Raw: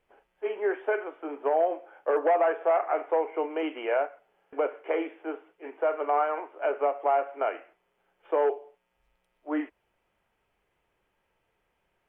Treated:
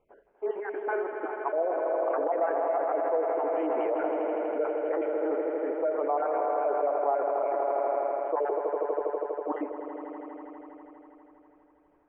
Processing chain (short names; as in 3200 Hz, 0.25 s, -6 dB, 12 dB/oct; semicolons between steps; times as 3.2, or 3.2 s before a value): random spectral dropouts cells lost 36%; LPF 1100 Hz 12 dB/oct; low shelf 210 Hz -5 dB; swelling echo 81 ms, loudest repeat 5, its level -11 dB; in parallel at +1 dB: negative-ratio compressor -33 dBFS, ratio -0.5; on the sum: gain -2 dB